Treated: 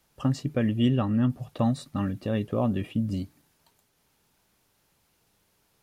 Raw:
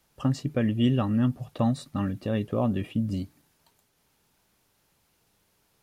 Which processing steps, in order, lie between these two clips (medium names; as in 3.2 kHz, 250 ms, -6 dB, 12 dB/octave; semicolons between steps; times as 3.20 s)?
0.88–1.30 s: treble shelf 5.3 kHz -7 dB